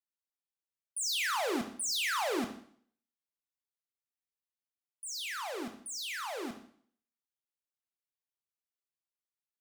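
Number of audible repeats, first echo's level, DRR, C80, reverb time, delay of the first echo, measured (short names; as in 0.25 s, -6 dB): none, none, 5.0 dB, 13.0 dB, 0.55 s, none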